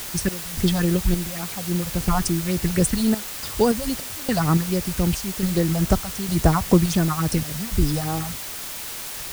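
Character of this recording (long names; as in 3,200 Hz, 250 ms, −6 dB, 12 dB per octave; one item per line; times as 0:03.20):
sample-and-hold tremolo, depth 95%
phaser sweep stages 4, 3.6 Hz, lowest notch 320–3,900 Hz
a quantiser's noise floor 6 bits, dither triangular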